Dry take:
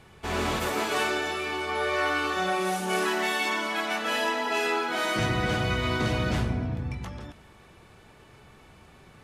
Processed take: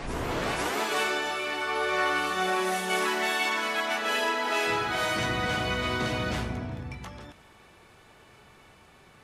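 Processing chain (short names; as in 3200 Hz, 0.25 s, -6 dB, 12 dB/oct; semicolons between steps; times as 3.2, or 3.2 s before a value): tape start at the beginning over 0.80 s; low shelf 320 Hz -7 dB; reverse echo 0.491 s -8 dB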